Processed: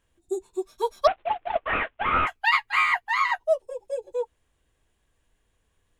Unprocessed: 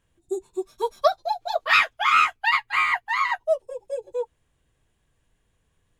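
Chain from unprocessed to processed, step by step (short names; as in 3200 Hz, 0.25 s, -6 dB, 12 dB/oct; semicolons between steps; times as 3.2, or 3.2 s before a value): 1.07–2.27 CVSD 16 kbps; bell 140 Hz -7.5 dB 1 oct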